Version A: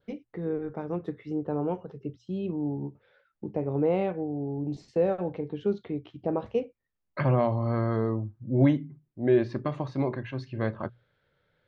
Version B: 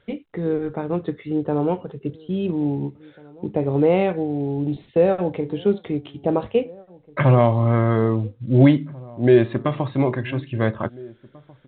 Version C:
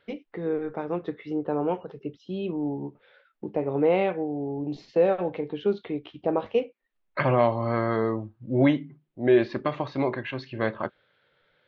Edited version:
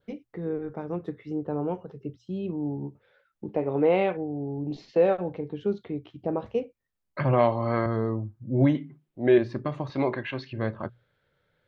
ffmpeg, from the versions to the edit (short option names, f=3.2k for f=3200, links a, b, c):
-filter_complex "[2:a]asplit=5[a][b][c][d][e];[0:a]asplit=6[f][g][h][i][j][k];[f]atrim=end=3.492[l];[a]atrim=start=3.488:end=4.172[m];[g]atrim=start=4.168:end=4.712[n];[b]atrim=start=4.708:end=5.172[o];[h]atrim=start=5.168:end=7.332[p];[c]atrim=start=7.328:end=7.862[q];[i]atrim=start=7.858:end=8.752[r];[d]atrim=start=8.748:end=9.382[s];[j]atrim=start=9.378:end=9.902[t];[e]atrim=start=9.898:end=10.532[u];[k]atrim=start=10.528[v];[l][m]acrossfade=d=0.004:c1=hsin:c2=hsin[w];[w][n]acrossfade=d=0.004:c1=hsin:c2=hsin[x];[x][o]acrossfade=d=0.004:c1=hsin:c2=hsin[y];[y][p]acrossfade=d=0.004:c1=hsin:c2=hsin[z];[z][q]acrossfade=d=0.004:c1=hsin:c2=hsin[aa];[aa][r]acrossfade=d=0.004:c1=hsin:c2=hsin[ab];[ab][s]acrossfade=d=0.004:c1=hsin:c2=hsin[ac];[ac][t]acrossfade=d=0.004:c1=hsin:c2=hsin[ad];[ad][u]acrossfade=d=0.004:c1=hsin:c2=hsin[ae];[ae][v]acrossfade=d=0.004:c1=hsin:c2=hsin"